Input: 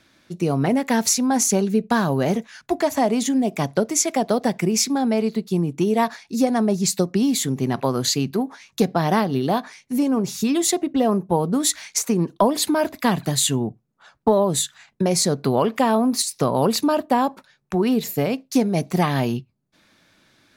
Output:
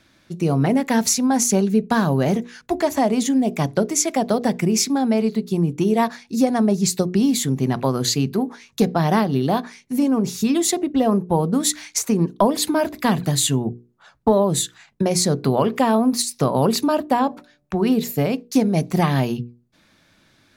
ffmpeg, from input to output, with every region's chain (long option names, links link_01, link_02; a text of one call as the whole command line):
ffmpeg -i in.wav -filter_complex "[0:a]asettb=1/sr,asplit=3[link_01][link_02][link_03];[link_01]atrim=end=17.194[link_04];[link_02]atrim=start=17.19:end=17.84,asetpts=PTS-STARTPTS,afade=type=in:duration=0.004:curve=qsin,afade=type=out:start_time=0.646:duration=0.004:curve=qsin,acrossover=split=5800[link_05][link_06];[link_06]acompressor=threshold=-56dB:ratio=4:attack=1:release=60[link_07];[link_05][link_07]amix=inputs=2:normalize=0,bandreject=frequency=146.6:width_type=h:width=4,bandreject=frequency=293.2:width_type=h:width=4,bandreject=frequency=439.8:width_type=h:width=4,bandreject=frequency=586.4:width_type=h:width=4,bandreject=frequency=733:width_type=h:width=4[link_08];[link_03]atrim=start=17.836[link_09];[link_04][link_08]acrossfade=duration=0.004:curve1=hsin:curve2=qsin[link_10];[link_10][link_09]acrossfade=duration=0.004:curve1=qsin:curve2=hsin,lowshelf=frequency=180:gain=6.5,bandreject=frequency=60:width_type=h:width=6,bandreject=frequency=120:width_type=h:width=6,bandreject=frequency=180:width_type=h:width=6,bandreject=frequency=240:width_type=h:width=6,bandreject=frequency=300:width_type=h:width=6,bandreject=frequency=360:width_type=h:width=6,bandreject=frequency=420:width_type=h:width=6,bandreject=frequency=480:width_type=h:width=6" out.wav